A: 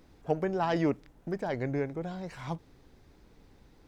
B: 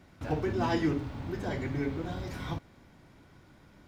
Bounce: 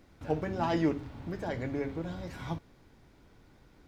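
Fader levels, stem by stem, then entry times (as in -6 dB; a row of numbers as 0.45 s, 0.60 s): -3.5 dB, -6.0 dB; 0.00 s, 0.00 s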